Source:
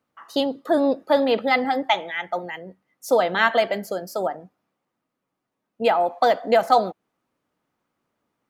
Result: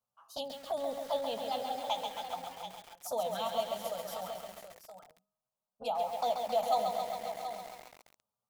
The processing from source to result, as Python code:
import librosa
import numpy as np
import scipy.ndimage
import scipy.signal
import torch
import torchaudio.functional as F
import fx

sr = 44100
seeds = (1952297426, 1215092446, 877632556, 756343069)

y = fx.high_shelf(x, sr, hz=4800.0, db=8.5)
y = fx.hum_notches(y, sr, base_hz=50, count=6)
y = fx.env_flanger(y, sr, rest_ms=9.4, full_db=-17.0)
y = fx.comb_fb(y, sr, f0_hz=210.0, decay_s=0.94, harmonics='all', damping=0.0, mix_pct=30)
y = fx.dynamic_eq(y, sr, hz=440.0, q=1.8, threshold_db=-34.0, ratio=4.0, max_db=-4)
y = fx.fixed_phaser(y, sr, hz=800.0, stages=4)
y = fx.doubler(y, sr, ms=16.0, db=-13.0)
y = y + 10.0 ** (-10.5 / 20.0) * np.pad(y, (int(728 * sr / 1000.0), 0))[:len(y)]
y = fx.echo_crushed(y, sr, ms=135, feedback_pct=80, bits=7, wet_db=-5)
y = F.gain(torch.from_numpy(y), -7.0).numpy()